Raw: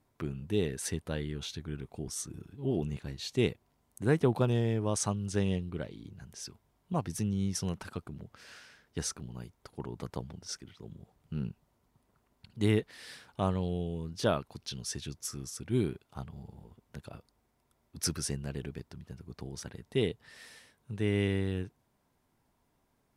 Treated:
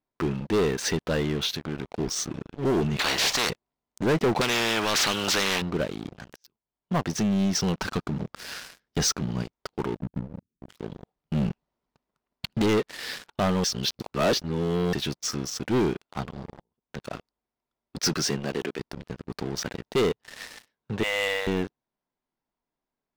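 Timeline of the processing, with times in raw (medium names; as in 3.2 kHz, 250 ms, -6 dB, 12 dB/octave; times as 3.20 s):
1.46–1.98 s: compression 2:1, threshold -40 dBFS
2.99–3.50 s: spectrum-flattening compressor 10:1
4.41–5.62 s: spectrum-flattening compressor 4:1
6.36–7.15 s: fade in, from -21.5 dB
7.77–9.43 s: tone controls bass +6 dB, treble +6 dB
9.97–10.69 s: inverse Chebyshev band-stop 630–8800 Hz, stop band 50 dB
11.33–12.62 s: transient shaper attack +11 dB, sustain +5 dB
13.64–14.93 s: reverse
16.61–17.14 s: fade in, from -16 dB
18.08–18.78 s: high-pass 87 Hz -> 340 Hz
21.03–21.47 s: brick-wall FIR high-pass 470 Hz
whole clip: low-pass 5.8 kHz 24 dB/octave; peaking EQ 86 Hz -13.5 dB 1.3 oct; waveshaping leveller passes 5; trim -3 dB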